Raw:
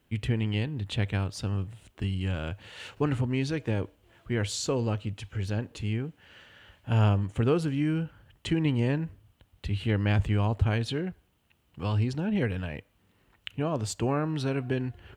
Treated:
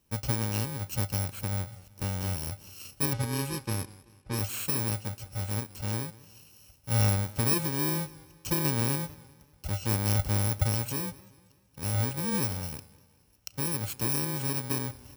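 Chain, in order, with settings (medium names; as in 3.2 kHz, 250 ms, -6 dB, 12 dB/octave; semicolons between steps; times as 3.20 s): bit-reversed sample order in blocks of 64 samples; 3.13–4.39 s: level-controlled noise filter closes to 2.3 kHz, open at -23.5 dBFS; modulated delay 192 ms, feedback 46%, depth 103 cents, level -20.5 dB; trim -2 dB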